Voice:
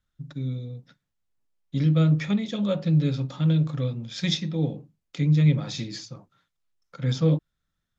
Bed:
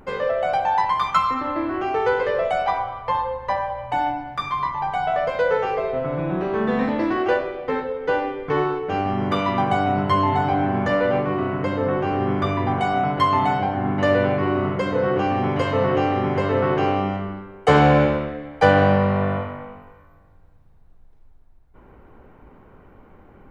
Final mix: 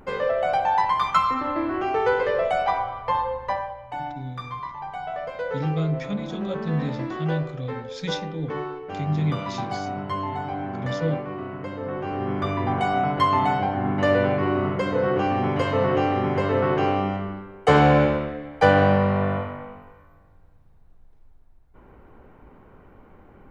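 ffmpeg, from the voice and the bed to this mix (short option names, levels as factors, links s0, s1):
-filter_complex "[0:a]adelay=3800,volume=0.562[s0];[1:a]volume=2.24,afade=t=out:st=3.39:d=0.4:silence=0.375837,afade=t=in:st=11.81:d=1.01:silence=0.398107[s1];[s0][s1]amix=inputs=2:normalize=0"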